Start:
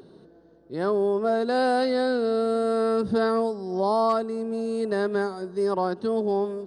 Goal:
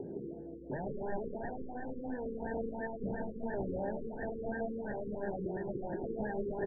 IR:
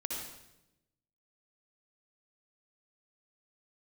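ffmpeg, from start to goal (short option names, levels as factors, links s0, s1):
-filter_complex "[0:a]equalizer=f=180:w=0.31:g=2,alimiter=limit=0.0668:level=0:latency=1:release=11,acrossover=split=350|3000[s0][s1][s2];[s0]acompressor=threshold=0.00501:ratio=8[s3];[s3][s1][s2]amix=inputs=3:normalize=0,aeval=exprs='(mod(47.3*val(0)+1,2)-1)/47.3':c=same,adynamicsmooth=sensitivity=7.5:basefreq=1700,asuperstop=centerf=1200:order=8:qfactor=1.7,asplit=2[s4][s5];[s5]adelay=15,volume=0.224[s6];[s4][s6]amix=inputs=2:normalize=0,asplit=2[s7][s8];[s8]adelay=163.3,volume=0.447,highshelf=f=4000:g=-3.67[s9];[s7][s9]amix=inputs=2:normalize=0,asplit=2[s10][s11];[1:a]atrim=start_sample=2205,lowpass=f=1200:w=0.5412,lowpass=f=1200:w=1.3066[s12];[s11][s12]afir=irnorm=-1:irlink=0,volume=0.316[s13];[s10][s13]amix=inputs=2:normalize=0,afftfilt=real='re*lt(b*sr/1024,500*pow(1900/500,0.5+0.5*sin(2*PI*2.9*pts/sr)))':imag='im*lt(b*sr/1024,500*pow(1900/500,0.5+0.5*sin(2*PI*2.9*pts/sr)))':win_size=1024:overlap=0.75,volume=1.58"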